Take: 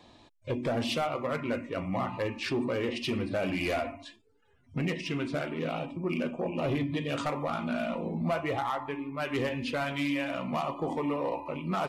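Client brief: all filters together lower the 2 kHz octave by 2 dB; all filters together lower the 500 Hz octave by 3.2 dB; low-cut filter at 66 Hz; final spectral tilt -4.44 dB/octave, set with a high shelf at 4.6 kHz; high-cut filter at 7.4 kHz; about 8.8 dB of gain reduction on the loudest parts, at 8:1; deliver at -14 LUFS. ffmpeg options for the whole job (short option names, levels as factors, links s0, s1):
-af "highpass=66,lowpass=7400,equalizer=f=500:t=o:g=-4,equalizer=f=2000:t=o:g=-3.5,highshelf=f=4600:g=5.5,acompressor=threshold=0.0141:ratio=8,volume=22.4"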